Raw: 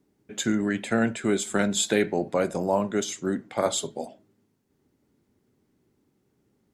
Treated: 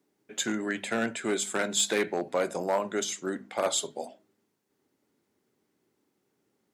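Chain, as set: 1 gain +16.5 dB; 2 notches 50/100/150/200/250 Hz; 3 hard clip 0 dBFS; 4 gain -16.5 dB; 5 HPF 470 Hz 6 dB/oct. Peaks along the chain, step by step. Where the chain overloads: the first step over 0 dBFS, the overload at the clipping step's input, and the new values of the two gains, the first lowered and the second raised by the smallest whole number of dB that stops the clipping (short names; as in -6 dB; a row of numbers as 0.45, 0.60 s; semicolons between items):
+7.5, +7.5, 0.0, -16.5, -14.0 dBFS; step 1, 7.5 dB; step 1 +8.5 dB, step 4 -8.5 dB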